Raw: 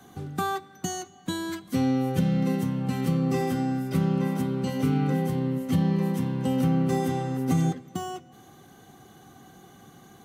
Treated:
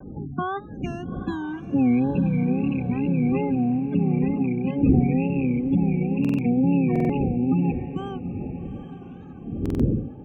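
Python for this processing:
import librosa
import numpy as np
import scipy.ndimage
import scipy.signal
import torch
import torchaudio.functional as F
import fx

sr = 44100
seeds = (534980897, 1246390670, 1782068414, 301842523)

y = fx.rattle_buzz(x, sr, strikes_db=-27.0, level_db=-22.0)
y = fx.dmg_wind(y, sr, seeds[0], corner_hz=220.0, level_db=-31.0)
y = fx.spec_gate(y, sr, threshold_db=-20, keep='strong')
y = scipy.signal.savgol_filter(y, 25, 4, mode='constant')
y = fx.peak_eq(y, sr, hz=260.0, db=4.5, octaves=0.42)
y = fx.notch_comb(y, sr, f0_hz=680.0)
y = fx.wow_flutter(y, sr, seeds[1], rate_hz=2.1, depth_cents=130.0)
y = fx.echo_diffused(y, sr, ms=818, feedback_pct=42, wet_db=-12.5)
y = fx.buffer_glitch(y, sr, at_s=(6.2, 6.91, 9.61), block=2048, repeats=3)
y = y * 10.0 ** (1.0 / 20.0)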